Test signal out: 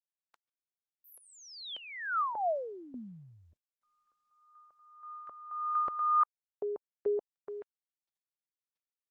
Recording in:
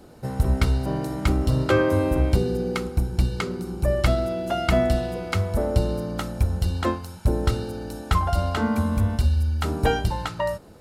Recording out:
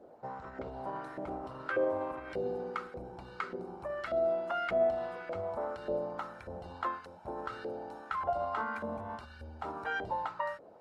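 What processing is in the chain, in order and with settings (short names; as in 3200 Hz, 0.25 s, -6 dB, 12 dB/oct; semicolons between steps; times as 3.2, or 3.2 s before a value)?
limiter -17.5 dBFS; LFO band-pass saw up 1.7 Hz 530–1700 Hz; gain +1 dB; Opus 24 kbps 48000 Hz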